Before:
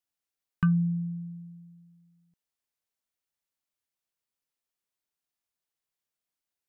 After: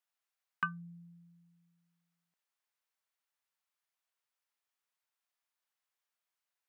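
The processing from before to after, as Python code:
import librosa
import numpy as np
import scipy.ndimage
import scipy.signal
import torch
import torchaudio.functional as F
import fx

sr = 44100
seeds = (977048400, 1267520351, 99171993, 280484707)

y = scipy.signal.sosfilt(scipy.signal.butter(2, 960.0, 'highpass', fs=sr, output='sos'), x)
y = fx.high_shelf(y, sr, hz=2300.0, db=-11.0)
y = y * 10.0 ** (7.5 / 20.0)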